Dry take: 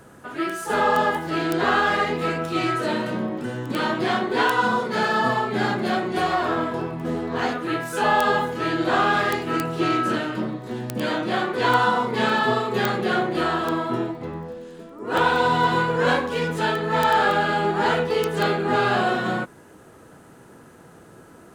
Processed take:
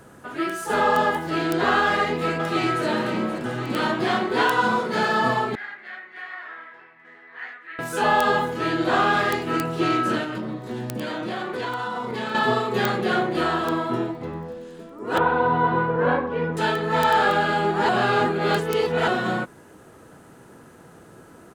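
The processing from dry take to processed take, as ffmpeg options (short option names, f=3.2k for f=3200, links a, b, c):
-filter_complex "[0:a]asplit=2[a][b];[b]afade=t=in:st=1.86:d=0.01,afade=t=out:st=2.85:d=0.01,aecho=0:1:530|1060|1590|2120|2650|3180|3710|4240|4770|5300|5830|6360:0.334965|0.251224|0.188418|0.141314|0.105985|0.0794889|0.0596167|0.0447125|0.0335344|0.0251508|0.0188631|0.0141473[c];[a][c]amix=inputs=2:normalize=0,asettb=1/sr,asplit=3[d][e][f];[d]atrim=end=5.554[g];[e]atrim=start=5.55:end=7.79,asetpts=PTS-STARTPTS,afade=t=in:d=0.004:c=qsin,afade=t=out:st=2.236:d=0.004:c=qsin,bandpass=f=1.9k:t=q:w=6.1[h];[f]atrim=start=7.786[i];[g][h]acrossfade=d=0.004:c1=hsin:c2=qsin[j];[j][i]acrossfade=d=0.004:c1=qsin:c2=hsin,asettb=1/sr,asplit=3[k][l][m];[k]atrim=end=10.234[n];[l]atrim=start=10.23:end=12.35,asetpts=PTS-STARTPTS,afade=t=in:d=0.004:c=qsin,afade=t=out:st=2.116:d=0.004:c=qsin,acompressor=threshold=-25dB:ratio=6:attack=3.2:release=140:knee=1:detection=peak[o];[m]atrim=start=12.346[p];[n][o]acrossfade=d=0.004:c1=hsin:c2=qsin[q];[q][p]acrossfade=d=0.004:c1=qsin:c2=hsin,asettb=1/sr,asplit=3[r][s][t];[r]atrim=end=15.184[u];[s]atrim=start=15.18:end=16.57,asetpts=PTS-STARTPTS,afade=t=in:d=0.004:c=qsin,afade=t=out:st=1.386:d=0.004:c=qsin,lowpass=1.5k[v];[t]atrim=start=16.566[w];[u][v]acrossfade=d=0.004:c1=hsin:c2=qsin[x];[x][w]acrossfade=d=0.004:c1=qsin:c2=hsin,asplit=3[y][z][aa];[y]atrim=end=17.892[ab];[z]atrim=start=17.888:end=19.082,asetpts=PTS-STARTPTS,areverse[ac];[aa]atrim=start=19.078[ad];[ab][ac]acrossfade=d=0.004:c1=hsin:c2=hsin[ae];[ae][ad]acrossfade=d=0.004:c1=hsin:c2=hsin"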